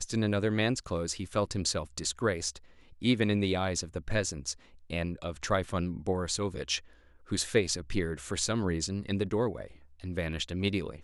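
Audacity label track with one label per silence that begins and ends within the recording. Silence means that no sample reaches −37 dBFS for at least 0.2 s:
2.570000	3.020000	silence
4.530000	4.900000	silence
6.790000	7.310000	silence
9.670000	10.040000	silence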